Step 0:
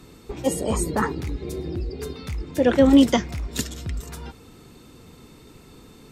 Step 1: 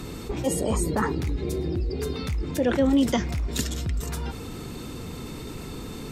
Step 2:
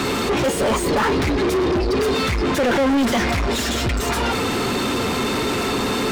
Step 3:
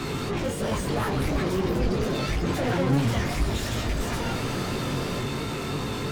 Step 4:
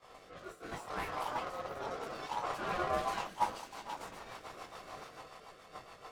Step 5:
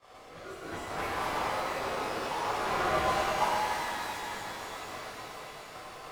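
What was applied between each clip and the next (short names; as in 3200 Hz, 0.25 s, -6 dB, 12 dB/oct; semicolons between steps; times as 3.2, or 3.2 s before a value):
low shelf 190 Hz +3 dB; fast leveller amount 50%; gain -8.5 dB
notch comb 160 Hz; overdrive pedal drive 38 dB, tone 2400 Hz, clips at -11.5 dBFS
octaver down 1 oct, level +4 dB; chorus 2.9 Hz, delay 17.5 ms, depth 4.5 ms; echoes that change speed 0.628 s, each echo +5 st, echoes 2, each echo -6 dB; gain -7.5 dB
ring modulator 900 Hz; expander -19 dBFS; rotary speaker horn 0.7 Hz, later 7 Hz, at 2.78; gain +2 dB
shimmer reverb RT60 2.9 s, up +12 st, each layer -8 dB, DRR -5.5 dB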